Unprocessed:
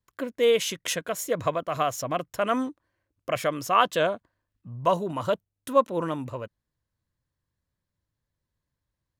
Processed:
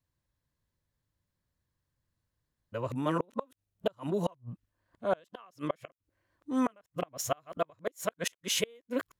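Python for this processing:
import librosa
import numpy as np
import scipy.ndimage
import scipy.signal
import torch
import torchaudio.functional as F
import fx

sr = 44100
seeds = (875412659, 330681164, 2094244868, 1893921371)

y = np.flip(x).copy()
y = fx.gate_flip(y, sr, shuts_db=-17.0, range_db=-34)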